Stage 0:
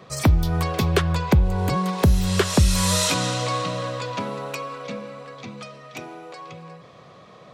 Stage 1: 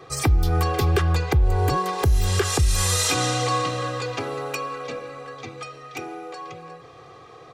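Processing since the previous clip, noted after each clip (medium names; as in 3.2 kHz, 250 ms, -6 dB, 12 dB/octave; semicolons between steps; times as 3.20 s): peaking EQ 3.7 kHz -3 dB 0.77 oct; comb 2.5 ms, depth 94%; peak limiter -11.5 dBFS, peak gain reduction 8 dB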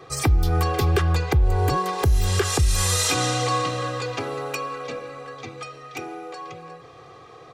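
no audible change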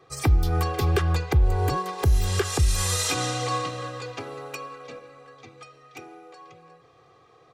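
upward expansion 1.5:1, over -36 dBFS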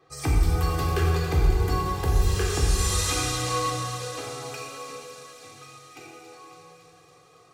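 feedback echo behind a high-pass 279 ms, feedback 77%, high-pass 3.1 kHz, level -9.5 dB; plate-style reverb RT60 2 s, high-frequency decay 0.85×, DRR -3.5 dB; trim -5.5 dB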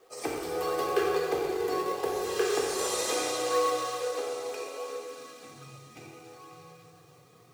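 in parallel at -6.5 dB: decimation with a swept rate 17×, swing 160% 0.71 Hz; on the sum: high-pass sweep 450 Hz -> 120 Hz, 4.89–5.79 s; word length cut 10-bit, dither none; trim -5.5 dB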